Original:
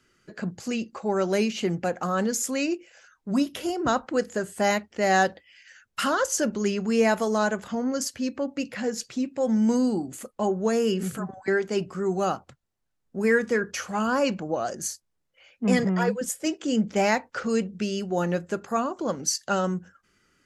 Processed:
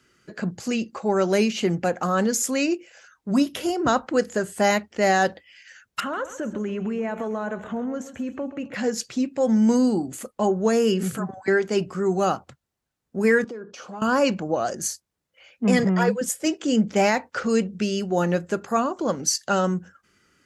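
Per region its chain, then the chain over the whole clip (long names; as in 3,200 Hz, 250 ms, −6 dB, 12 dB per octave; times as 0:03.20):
0:06.00–0:08.74: downward compressor, threshold −28 dBFS + moving average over 9 samples + repeating echo 132 ms, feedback 32%, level −13 dB
0:13.44–0:14.02: parametric band 1,900 Hz −15 dB 0.9 octaves + downward compressor 10 to 1, threshold −34 dBFS + band-pass filter 220–3,700 Hz
whole clip: high-pass filter 48 Hz; boost into a limiter +11.5 dB; level −8 dB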